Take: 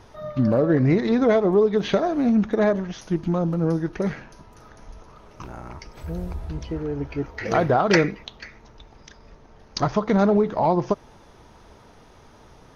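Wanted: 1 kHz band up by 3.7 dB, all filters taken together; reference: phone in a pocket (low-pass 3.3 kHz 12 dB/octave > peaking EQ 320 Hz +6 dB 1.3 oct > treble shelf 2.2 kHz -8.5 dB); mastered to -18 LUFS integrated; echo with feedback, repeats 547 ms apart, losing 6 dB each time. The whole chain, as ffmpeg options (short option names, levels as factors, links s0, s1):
-af "lowpass=3300,equalizer=f=320:t=o:w=1.3:g=6,equalizer=f=1000:t=o:g=5.5,highshelf=f=2200:g=-8.5,aecho=1:1:547|1094|1641|2188|2735|3282:0.501|0.251|0.125|0.0626|0.0313|0.0157"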